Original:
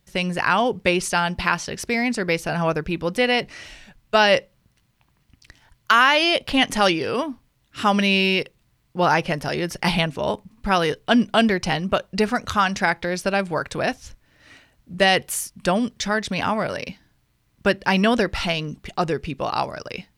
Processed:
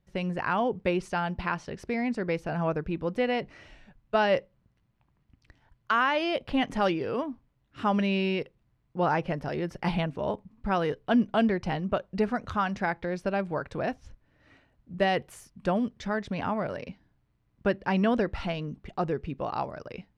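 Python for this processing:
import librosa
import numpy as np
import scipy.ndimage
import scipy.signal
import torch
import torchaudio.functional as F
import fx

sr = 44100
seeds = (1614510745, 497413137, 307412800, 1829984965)

y = fx.lowpass(x, sr, hz=1000.0, slope=6)
y = y * librosa.db_to_amplitude(-5.0)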